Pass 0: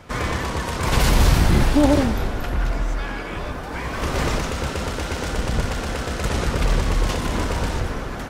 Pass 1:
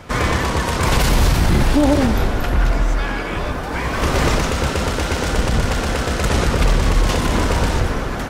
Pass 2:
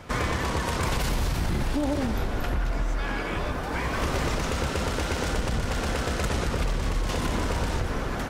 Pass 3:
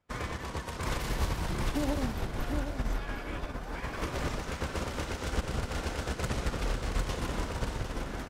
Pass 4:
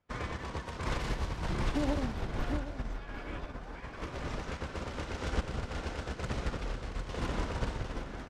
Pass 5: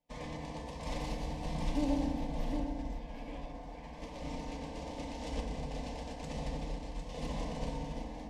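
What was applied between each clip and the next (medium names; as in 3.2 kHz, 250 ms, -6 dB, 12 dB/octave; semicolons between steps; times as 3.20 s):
peak limiter -12.5 dBFS, peak gain reduction 7.5 dB; trim +6 dB
compression, threshold -17 dBFS, peak gain reduction 7 dB; trim -5.5 dB
feedback delay 753 ms, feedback 39%, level -5 dB; upward expansion 2.5:1, over -42 dBFS; trim -3 dB
random-step tremolo 3.5 Hz; distance through air 65 m
static phaser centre 370 Hz, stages 6; FDN reverb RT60 1.8 s, low-frequency decay 1×, high-frequency decay 0.3×, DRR -1 dB; trim -3.5 dB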